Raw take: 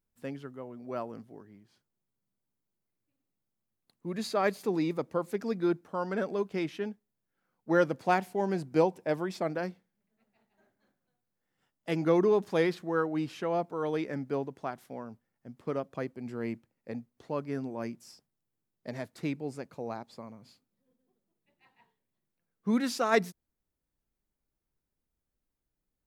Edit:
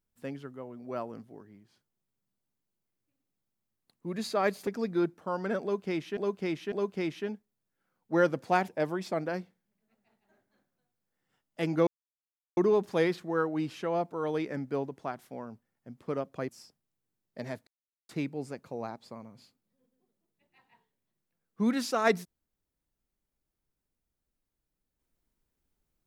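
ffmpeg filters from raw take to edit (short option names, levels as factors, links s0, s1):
-filter_complex "[0:a]asplit=8[s0][s1][s2][s3][s4][s5][s6][s7];[s0]atrim=end=4.672[s8];[s1]atrim=start=5.338:end=6.842[s9];[s2]atrim=start=6.288:end=6.842[s10];[s3]atrim=start=6.288:end=8.252[s11];[s4]atrim=start=8.968:end=12.16,asetpts=PTS-STARTPTS,afade=t=out:st=3.188:d=0.004:c=hsin,apad=pad_dur=0.7[s12];[s5]atrim=start=12.16:end=16.082,asetpts=PTS-STARTPTS,afade=t=in:d=0.004:c=hsin[s13];[s6]atrim=start=17.978:end=19.16,asetpts=PTS-STARTPTS,afade=t=out:st=1.178:d=0.004:c=hsin,apad=pad_dur=0.42[s14];[s7]atrim=start=19.16,asetpts=PTS-STARTPTS,afade=t=in:d=0.004:c=hsin[s15];[s8][s9]acrossfade=d=0.004:c1=hsin:c2=hsin[s16];[s16][s10]acrossfade=d=0.004:c1=hsin:c2=hsin[s17];[s17][s11]acrossfade=d=0.004:c1=hsin:c2=hsin[s18];[s12][s13]concat=n=2:v=0:a=1[s19];[s18][s19]acrossfade=d=0.004:c1=hsin:c2=hsin[s20];[s14][s15]concat=n=2:v=0:a=1[s21];[s20][s21]acrossfade=d=0.004:c1=hsin:c2=hsin"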